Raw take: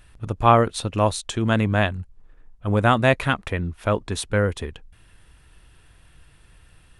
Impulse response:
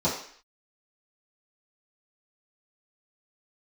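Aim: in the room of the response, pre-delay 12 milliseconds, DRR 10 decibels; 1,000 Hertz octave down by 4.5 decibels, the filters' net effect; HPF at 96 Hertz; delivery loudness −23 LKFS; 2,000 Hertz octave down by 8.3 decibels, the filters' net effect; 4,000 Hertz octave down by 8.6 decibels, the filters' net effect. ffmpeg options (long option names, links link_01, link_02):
-filter_complex "[0:a]highpass=96,equalizer=frequency=1000:width_type=o:gain=-3.5,equalizer=frequency=2000:width_type=o:gain=-8.5,equalizer=frequency=4000:width_type=o:gain=-7.5,asplit=2[link_01][link_02];[1:a]atrim=start_sample=2205,adelay=12[link_03];[link_02][link_03]afir=irnorm=-1:irlink=0,volume=-22dB[link_04];[link_01][link_04]amix=inputs=2:normalize=0,volume=0.5dB"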